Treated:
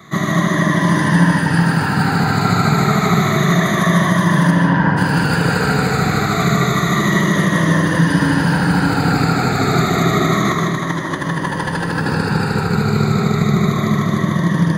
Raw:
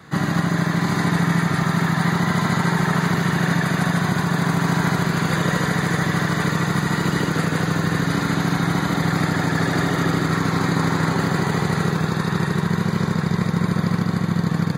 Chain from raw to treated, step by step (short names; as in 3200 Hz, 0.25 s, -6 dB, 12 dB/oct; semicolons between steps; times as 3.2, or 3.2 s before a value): moving spectral ripple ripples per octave 1.2, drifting -0.29 Hz, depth 13 dB; 4.5–4.96 LPF 3900 Hz -> 1700 Hz 12 dB/oct; 10.51–12.15 negative-ratio compressor -22 dBFS, ratio -0.5; digital reverb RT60 1.4 s, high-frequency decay 0.35×, pre-delay 95 ms, DRR 1.5 dB; gain +1.5 dB